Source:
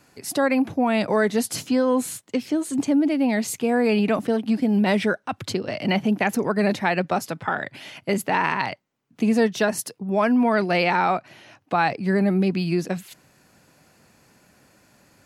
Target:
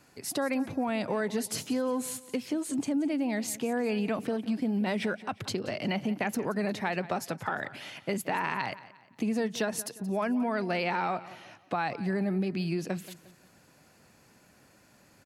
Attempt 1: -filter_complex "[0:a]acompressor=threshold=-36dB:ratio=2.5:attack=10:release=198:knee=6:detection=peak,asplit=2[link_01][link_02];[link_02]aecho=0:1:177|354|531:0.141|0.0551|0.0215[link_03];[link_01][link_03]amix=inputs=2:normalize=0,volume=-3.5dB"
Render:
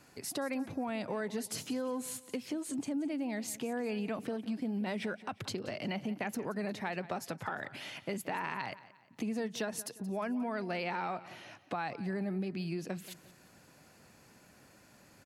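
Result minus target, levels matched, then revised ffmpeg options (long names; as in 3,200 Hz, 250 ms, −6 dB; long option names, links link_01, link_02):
downward compressor: peak gain reduction +6.5 dB
-filter_complex "[0:a]acompressor=threshold=-25.5dB:ratio=2.5:attack=10:release=198:knee=6:detection=peak,asplit=2[link_01][link_02];[link_02]aecho=0:1:177|354|531:0.141|0.0551|0.0215[link_03];[link_01][link_03]amix=inputs=2:normalize=0,volume=-3.5dB"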